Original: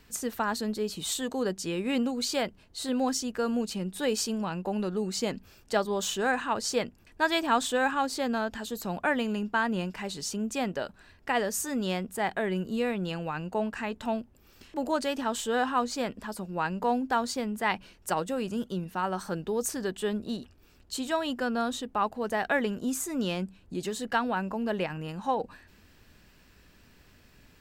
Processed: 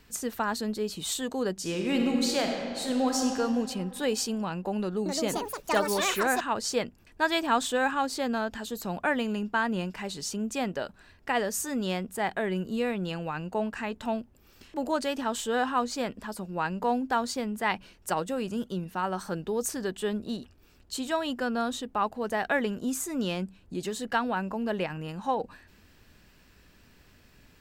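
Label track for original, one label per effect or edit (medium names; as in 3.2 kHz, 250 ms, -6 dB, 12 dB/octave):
1.530000	3.360000	reverb throw, RT60 2.5 s, DRR 1 dB
4.780000	6.800000	ever faster or slower copies 277 ms, each echo +7 st, echoes 2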